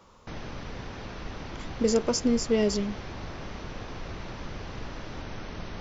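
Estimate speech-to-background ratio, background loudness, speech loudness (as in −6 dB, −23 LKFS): 13.5 dB, −40.0 LKFS, −26.5 LKFS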